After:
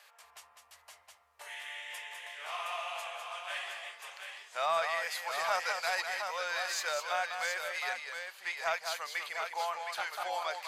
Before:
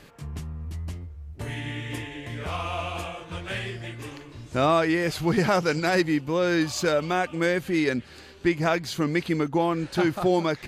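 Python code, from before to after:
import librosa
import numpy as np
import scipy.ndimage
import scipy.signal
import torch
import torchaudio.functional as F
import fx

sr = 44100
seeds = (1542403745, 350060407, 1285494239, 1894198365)

p1 = scipy.signal.sosfilt(scipy.signal.cheby2(4, 40, 340.0, 'highpass', fs=sr, output='sos'), x)
p2 = fx.high_shelf(p1, sr, hz=9400.0, db=4.0)
p3 = 10.0 ** (-24.0 / 20.0) * np.tanh(p2 / 10.0 ** (-24.0 / 20.0))
p4 = p2 + F.gain(torch.from_numpy(p3), -8.5).numpy()
p5 = fx.echo_multitap(p4, sr, ms=(202, 717), db=(-6.5, -6.5))
y = F.gain(torch.from_numpy(p5), -8.5).numpy()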